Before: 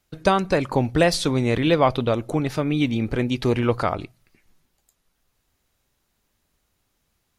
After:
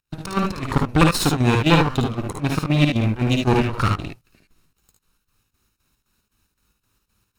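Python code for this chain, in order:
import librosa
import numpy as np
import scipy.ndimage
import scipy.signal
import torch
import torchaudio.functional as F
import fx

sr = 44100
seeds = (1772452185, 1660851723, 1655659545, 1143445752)

y = fx.lower_of_two(x, sr, delay_ms=0.75)
y = fx.volume_shaper(y, sr, bpm=116, per_beat=2, depth_db=-21, release_ms=107.0, shape='slow start')
y = fx.room_early_taps(y, sr, ms=(55, 74), db=(-5.0, -5.0))
y = F.gain(torch.from_numpy(y), 4.0).numpy()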